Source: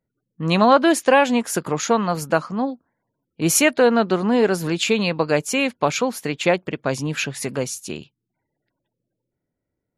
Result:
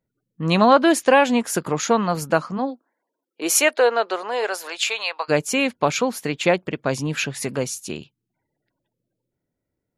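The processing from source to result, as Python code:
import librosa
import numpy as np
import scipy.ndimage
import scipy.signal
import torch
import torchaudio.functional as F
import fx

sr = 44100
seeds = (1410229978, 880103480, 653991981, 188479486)

y = fx.highpass(x, sr, hz=fx.line((2.57, 250.0), (5.28, 760.0)), slope=24, at=(2.57, 5.28), fade=0.02)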